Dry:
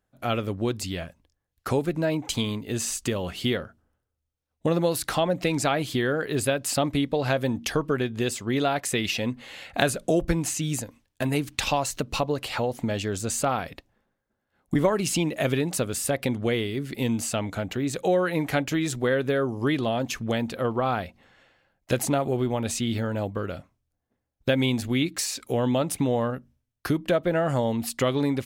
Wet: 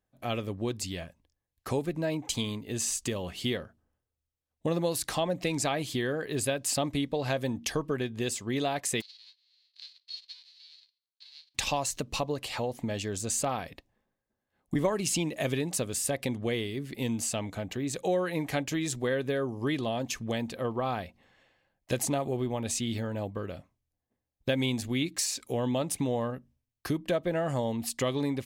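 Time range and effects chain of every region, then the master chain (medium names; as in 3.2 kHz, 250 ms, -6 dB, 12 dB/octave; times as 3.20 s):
9.00–11.54 s: formants flattened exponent 0.1 + ladder band-pass 4.5 kHz, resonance 80% + distance through air 330 m
whole clip: band-stop 1.4 kHz, Q 7.1; dynamic bell 7 kHz, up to +5 dB, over -44 dBFS, Q 0.78; trim -5.5 dB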